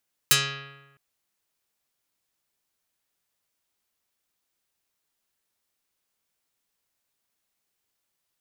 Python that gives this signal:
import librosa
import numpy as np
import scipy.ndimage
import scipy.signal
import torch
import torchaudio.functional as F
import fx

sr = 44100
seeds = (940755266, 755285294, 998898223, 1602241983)

y = fx.pluck(sr, length_s=0.66, note=49, decay_s=1.15, pick=0.48, brightness='dark')